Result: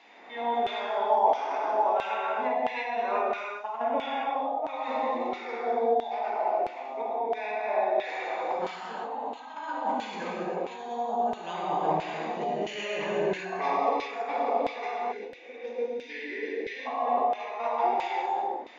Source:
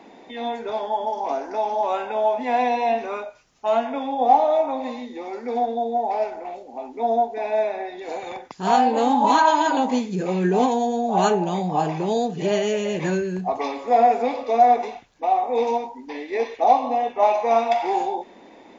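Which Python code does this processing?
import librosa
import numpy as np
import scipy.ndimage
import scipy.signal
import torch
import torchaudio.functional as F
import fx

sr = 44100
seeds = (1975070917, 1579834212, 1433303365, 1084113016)

y = fx.over_compress(x, sr, threshold_db=-25.0, ratio=-0.5)
y = fx.rev_gated(y, sr, seeds[0], gate_ms=420, shape='flat', drr_db=-6.0)
y = fx.filter_lfo_bandpass(y, sr, shape='saw_down', hz=1.5, low_hz=640.0, high_hz=3000.0, q=1.1)
y = fx.spec_box(y, sr, start_s=15.12, length_s=1.74, low_hz=560.0, high_hz=1400.0, gain_db=-22)
y = y * 10.0 ** (-4.5 / 20.0)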